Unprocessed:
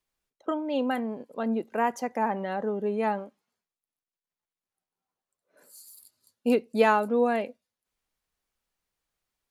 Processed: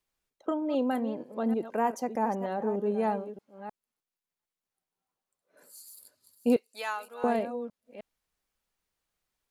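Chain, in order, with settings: reverse delay 0.308 s, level -12 dB; 6.56–7.24 HPF 1500 Hz 12 dB/oct; dynamic EQ 2200 Hz, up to -8 dB, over -45 dBFS, Q 0.74

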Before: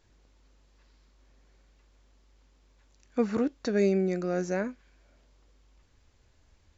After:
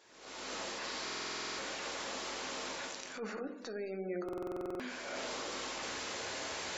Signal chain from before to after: recorder AGC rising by 67 dB/s; HPF 430 Hz 12 dB/oct; reverse; compressor 6:1, threshold -45 dBFS, peak gain reduction 19 dB; reverse; transient shaper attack -8 dB, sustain +3 dB; swung echo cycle 0.903 s, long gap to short 3:1, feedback 36%, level -22 dB; on a send at -5 dB: reverb RT60 0.85 s, pre-delay 5 ms; on the sum: spectral gate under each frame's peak -30 dB strong; stuck buffer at 1.03/4.24, samples 2048, times 11; gain +6.5 dB

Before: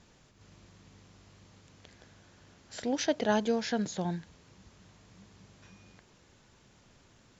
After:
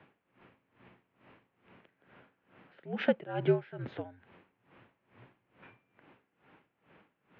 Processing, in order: mistuned SSB -77 Hz 240–2800 Hz; dB-linear tremolo 2.3 Hz, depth 21 dB; gain +5.5 dB

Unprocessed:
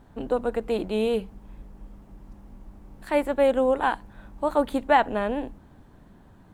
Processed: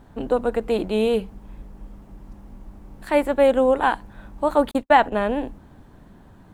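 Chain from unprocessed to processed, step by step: 4.71–5.12 gate -26 dBFS, range -58 dB; gain +4 dB

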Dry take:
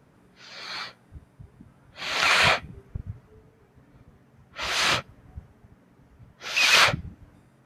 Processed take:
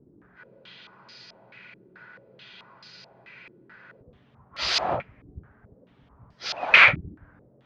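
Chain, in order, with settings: spectral freeze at 0.39, 3.61 s; stepped low-pass 4.6 Hz 350–4900 Hz; gain -2 dB

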